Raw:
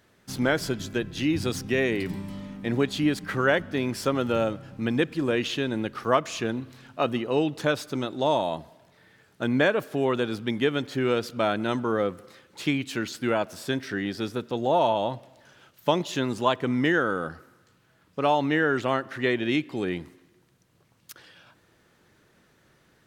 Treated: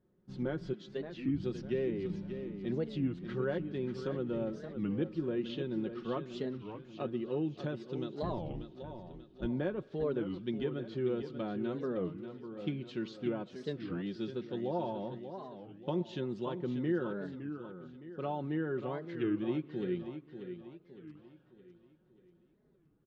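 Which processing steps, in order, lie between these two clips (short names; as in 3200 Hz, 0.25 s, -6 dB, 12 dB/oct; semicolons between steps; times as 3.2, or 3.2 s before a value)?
8.23–9.46 octaver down 2 oct, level +2 dB; treble ducked by the level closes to 1500 Hz, closed at -21.5 dBFS; 0.73–1.28 HPF 350 Hz 12 dB/oct; low-pass opened by the level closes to 1000 Hz, open at -21 dBFS; band shelf 1200 Hz -10 dB 2.4 oct; comb 5.5 ms, depth 53%; feedback echo 0.588 s, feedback 44%, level -9.5 dB; record warp 33 1/3 rpm, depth 250 cents; gain -8.5 dB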